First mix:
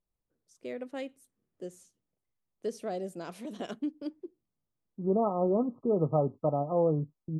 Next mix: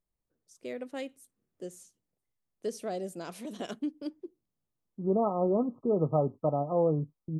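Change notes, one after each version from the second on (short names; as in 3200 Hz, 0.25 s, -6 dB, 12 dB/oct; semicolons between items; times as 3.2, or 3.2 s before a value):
master: add high shelf 4500 Hz +6.5 dB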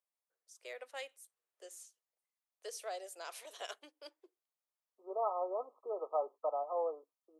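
master: add Bessel high-pass 850 Hz, order 8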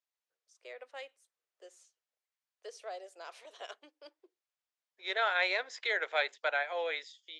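second voice: remove brick-wall FIR low-pass 1300 Hz; master: add air absorption 100 m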